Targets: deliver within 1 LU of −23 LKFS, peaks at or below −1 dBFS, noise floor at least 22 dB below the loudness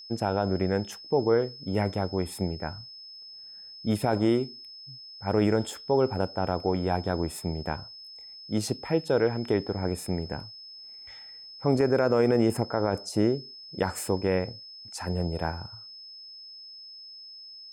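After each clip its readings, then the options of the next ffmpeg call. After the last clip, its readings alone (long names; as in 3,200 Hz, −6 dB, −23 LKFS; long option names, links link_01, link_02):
interfering tone 5,200 Hz; level of the tone −43 dBFS; integrated loudness −28.0 LKFS; sample peak −12.0 dBFS; target loudness −23.0 LKFS
→ -af "bandreject=frequency=5200:width=30"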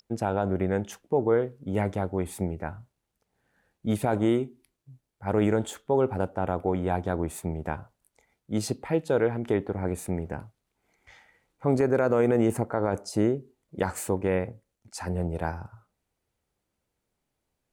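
interfering tone none found; integrated loudness −28.0 LKFS; sample peak −12.5 dBFS; target loudness −23.0 LKFS
→ -af "volume=5dB"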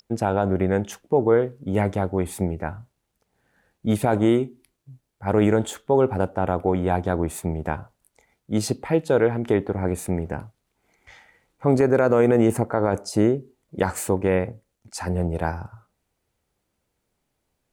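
integrated loudness −23.0 LKFS; sample peak −7.5 dBFS; background noise floor −77 dBFS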